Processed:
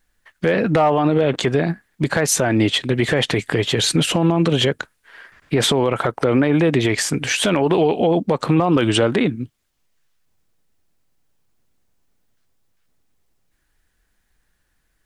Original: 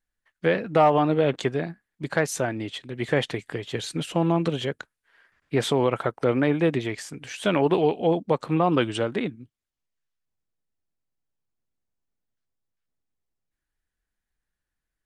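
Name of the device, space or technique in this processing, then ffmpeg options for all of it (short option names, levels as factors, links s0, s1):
loud club master: -af "acompressor=threshold=0.0355:ratio=1.5,asoftclip=type=hard:threshold=0.188,alimiter=level_in=15:limit=0.891:release=50:level=0:latency=1,volume=0.473"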